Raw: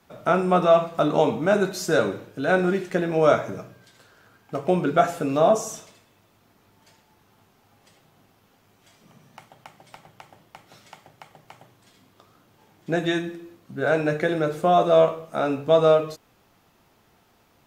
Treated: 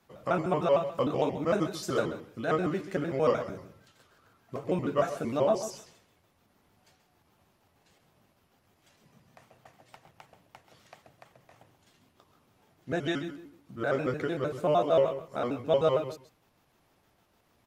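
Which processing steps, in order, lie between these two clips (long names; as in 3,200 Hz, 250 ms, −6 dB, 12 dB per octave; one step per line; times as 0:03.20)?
pitch shifter gated in a rhythm −3 semitones, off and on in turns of 76 ms
single-tap delay 133 ms −13.5 dB
level −7 dB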